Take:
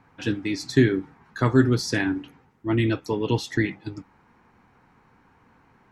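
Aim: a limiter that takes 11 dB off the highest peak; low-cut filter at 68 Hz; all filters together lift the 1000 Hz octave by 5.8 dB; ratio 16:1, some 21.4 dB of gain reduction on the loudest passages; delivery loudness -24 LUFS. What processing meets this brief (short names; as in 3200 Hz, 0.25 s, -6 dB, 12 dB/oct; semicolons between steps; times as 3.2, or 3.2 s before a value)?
HPF 68 Hz; bell 1000 Hz +7 dB; compressor 16:1, threshold -33 dBFS; gain +17 dB; limiter -12.5 dBFS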